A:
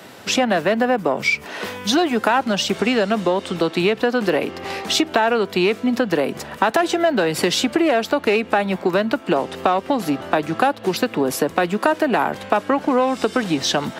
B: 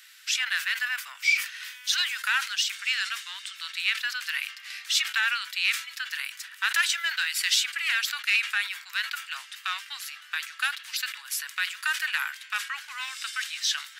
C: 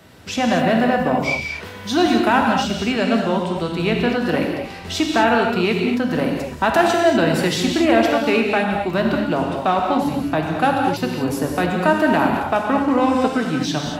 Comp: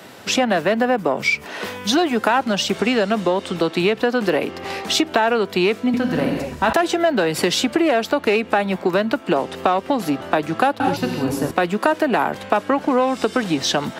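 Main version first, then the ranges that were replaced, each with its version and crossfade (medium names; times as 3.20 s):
A
5.94–6.73 s: from C
10.80–11.51 s: from C
not used: B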